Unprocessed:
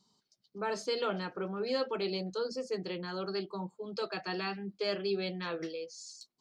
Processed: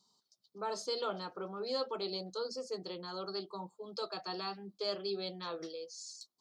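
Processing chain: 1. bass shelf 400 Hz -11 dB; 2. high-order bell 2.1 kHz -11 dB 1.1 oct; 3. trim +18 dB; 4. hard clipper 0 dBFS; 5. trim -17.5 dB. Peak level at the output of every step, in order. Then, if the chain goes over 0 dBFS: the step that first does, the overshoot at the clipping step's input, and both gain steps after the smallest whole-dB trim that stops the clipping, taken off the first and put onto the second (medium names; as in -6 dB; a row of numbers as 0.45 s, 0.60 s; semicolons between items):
-22.5 dBFS, -24.0 dBFS, -6.0 dBFS, -6.0 dBFS, -23.5 dBFS; nothing clips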